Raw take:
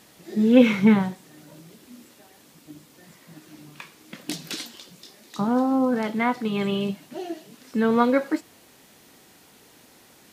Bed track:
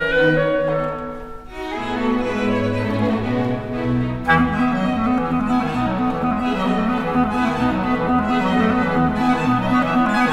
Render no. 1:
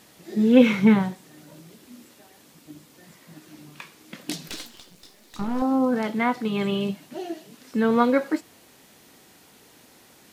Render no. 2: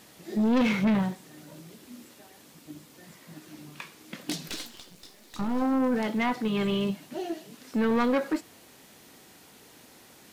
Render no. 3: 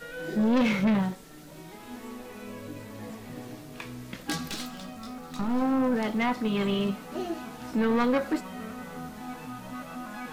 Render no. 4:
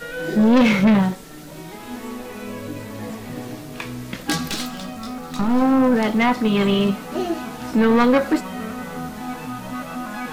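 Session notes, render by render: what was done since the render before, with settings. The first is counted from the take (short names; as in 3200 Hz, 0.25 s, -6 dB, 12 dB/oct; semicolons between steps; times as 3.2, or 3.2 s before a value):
4.48–5.62 half-wave gain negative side -12 dB
companded quantiser 8-bit; soft clip -20 dBFS, distortion -7 dB
add bed track -22 dB
gain +9 dB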